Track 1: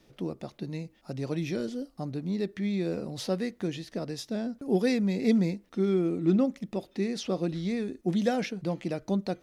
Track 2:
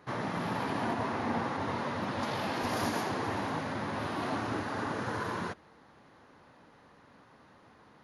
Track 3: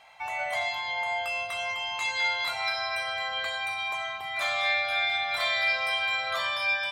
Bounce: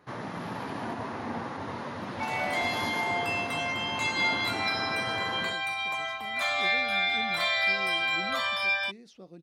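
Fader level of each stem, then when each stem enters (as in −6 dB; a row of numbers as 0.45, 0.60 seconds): −19.0, −2.5, 0.0 decibels; 1.90, 0.00, 2.00 seconds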